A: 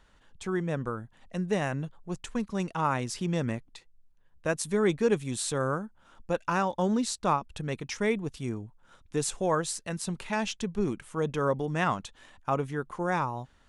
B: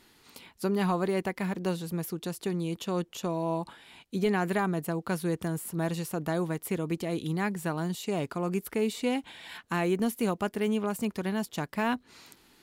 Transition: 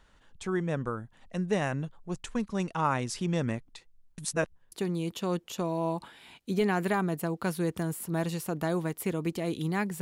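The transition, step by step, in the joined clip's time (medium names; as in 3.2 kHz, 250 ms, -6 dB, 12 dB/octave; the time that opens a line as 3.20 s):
A
4.18–4.72 s: reverse
4.72 s: go over to B from 2.37 s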